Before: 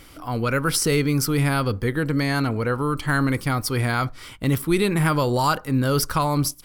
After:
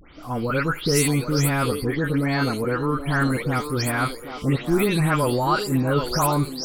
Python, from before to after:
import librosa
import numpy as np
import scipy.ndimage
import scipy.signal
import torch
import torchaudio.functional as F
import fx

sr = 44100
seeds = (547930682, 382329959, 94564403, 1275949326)

y = fx.spec_delay(x, sr, highs='late', ms=225)
y = fx.echo_wet_bandpass(y, sr, ms=775, feedback_pct=36, hz=600.0, wet_db=-7.0)